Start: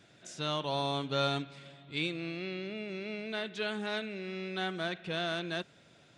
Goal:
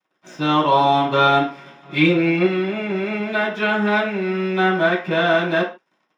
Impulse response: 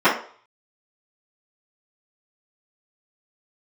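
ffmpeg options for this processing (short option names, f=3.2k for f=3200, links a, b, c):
-filter_complex "[0:a]asettb=1/sr,asplit=3[a][b][c];[a]atrim=end=1.824[d];[b]atrim=start=1.82:end=2.45,asetpts=PTS-STARTPTS,afade=t=in:d=0.004:c=qsin,afade=t=out:st=0.626:d=0.004:c=qsin,aecho=1:1:5.6:0.9,atrim=end_sample=27783[e];[c]atrim=start=2.446[f];[d][e]acrossfade=d=0.004:c1=hsin:c2=qsin[g];[g][f]acrossfade=d=0.004:c1=qsin:c2=hsin,aeval=exprs='sgn(val(0))*max(abs(val(0))-0.00211,0)':c=same[h];[1:a]atrim=start_sample=2205,afade=t=out:st=0.21:d=0.01,atrim=end_sample=9702[i];[h][i]afir=irnorm=-1:irlink=0,volume=-5.5dB"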